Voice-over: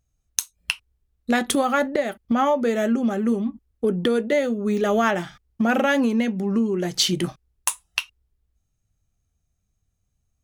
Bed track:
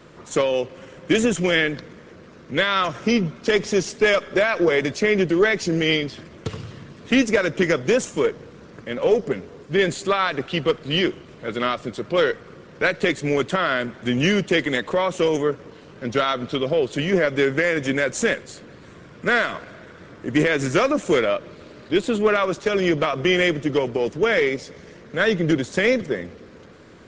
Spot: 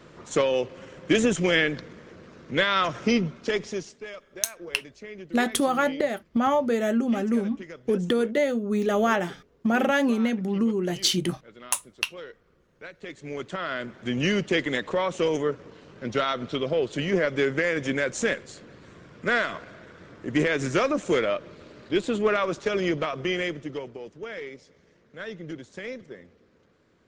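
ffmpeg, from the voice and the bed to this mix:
-filter_complex "[0:a]adelay=4050,volume=0.75[s0];[1:a]volume=5.62,afade=t=out:st=3.07:d=0.97:silence=0.105925,afade=t=in:st=12.98:d=1.4:silence=0.133352,afade=t=out:st=22.65:d=1.39:silence=0.223872[s1];[s0][s1]amix=inputs=2:normalize=0"

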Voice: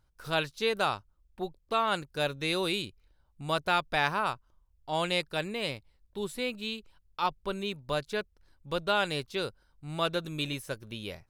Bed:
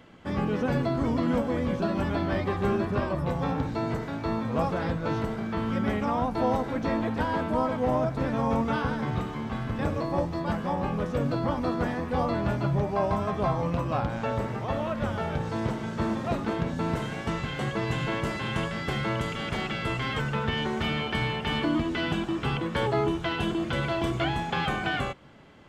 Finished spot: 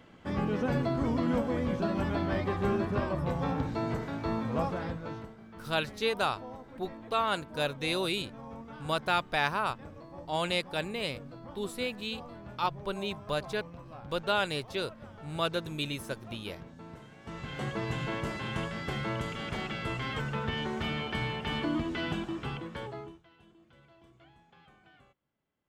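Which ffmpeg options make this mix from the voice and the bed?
-filter_complex "[0:a]adelay=5400,volume=0.891[s0];[1:a]volume=3.55,afade=t=out:st=4.51:d=0.83:silence=0.158489,afade=t=in:st=17.2:d=0.42:silence=0.199526,afade=t=out:st=22.11:d=1.12:silence=0.0446684[s1];[s0][s1]amix=inputs=2:normalize=0"

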